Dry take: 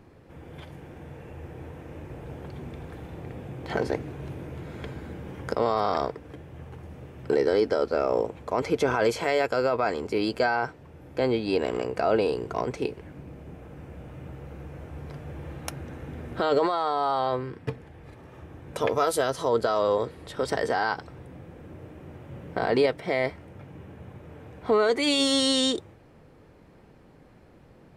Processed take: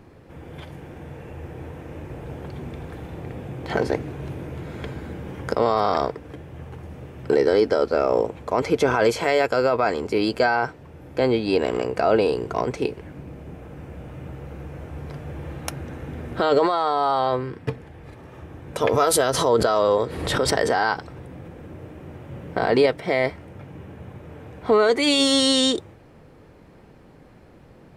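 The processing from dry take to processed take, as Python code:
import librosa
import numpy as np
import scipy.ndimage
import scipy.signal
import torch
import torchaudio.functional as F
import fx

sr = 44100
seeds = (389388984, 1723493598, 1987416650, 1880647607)

y = fx.pre_swell(x, sr, db_per_s=47.0, at=(18.88, 21.67))
y = y * librosa.db_to_amplitude(4.5)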